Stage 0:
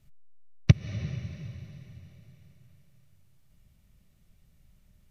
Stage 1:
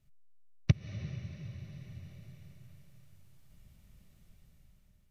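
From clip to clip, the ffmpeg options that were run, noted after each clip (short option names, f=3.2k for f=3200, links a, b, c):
-af "dynaudnorm=f=280:g=7:m=11dB,volume=-8dB"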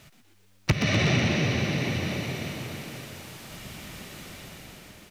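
-filter_complex "[0:a]asplit=2[a][b];[b]highpass=f=720:p=1,volume=38dB,asoftclip=type=tanh:threshold=-10.5dB[c];[a][c]amix=inputs=2:normalize=0,lowpass=f=4.3k:p=1,volume=-6dB,asplit=2[d][e];[e]asplit=8[f][g][h][i][j][k][l][m];[f]adelay=123,afreqshift=95,volume=-7dB[n];[g]adelay=246,afreqshift=190,volume=-11.4dB[o];[h]adelay=369,afreqshift=285,volume=-15.9dB[p];[i]adelay=492,afreqshift=380,volume=-20.3dB[q];[j]adelay=615,afreqshift=475,volume=-24.7dB[r];[k]adelay=738,afreqshift=570,volume=-29.2dB[s];[l]adelay=861,afreqshift=665,volume=-33.6dB[t];[m]adelay=984,afreqshift=760,volume=-38.1dB[u];[n][o][p][q][r][s][t][u]amix=inputs=8:normalize=0[v];[d][v]amix=inputs=2:normalize=0"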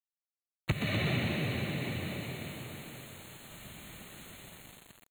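-af "acrusher=bits=6:mix=0:aa=0.000001,asuperstop=centerf=5300:order=20:qfactor=2.7,volume=-8dB"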